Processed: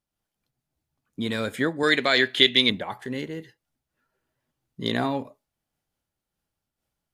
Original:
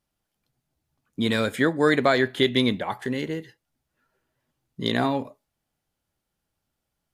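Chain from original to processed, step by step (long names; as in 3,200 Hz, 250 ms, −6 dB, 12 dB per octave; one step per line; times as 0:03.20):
0:01.83–0:02.70: meter weighting curve D
amplitude modulation by smooth noise, depth 60%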